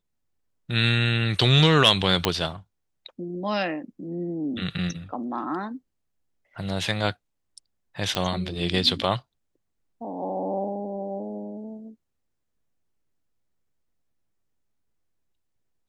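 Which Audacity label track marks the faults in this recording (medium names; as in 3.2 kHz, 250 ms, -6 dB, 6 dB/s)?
2.250000	2.250000	pop -4 dBFS
8.150000	8.150000	pop -10 dBFS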